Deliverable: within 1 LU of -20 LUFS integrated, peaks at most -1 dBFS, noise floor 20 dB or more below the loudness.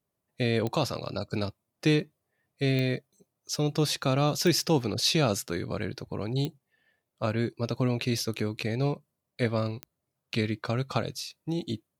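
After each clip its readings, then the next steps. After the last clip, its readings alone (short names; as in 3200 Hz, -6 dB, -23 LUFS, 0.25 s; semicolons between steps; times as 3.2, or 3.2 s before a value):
clicks 5; loudness -29.0 LUFS; peak -12.5 dBFS; loudness target -20.0 LUFS
-> de-click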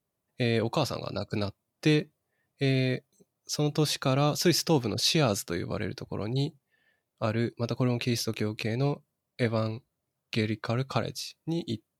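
clicks 0; loudness -29.0 LUFS; peak -12.5 dBFS; loudness target -20.0 LUFS
-> gain +9 dB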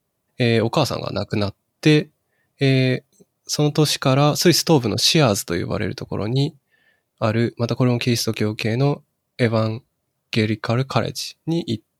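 loudness -20.0 LUFS; peak -3.5 dBFS; noise floor -74 dBFS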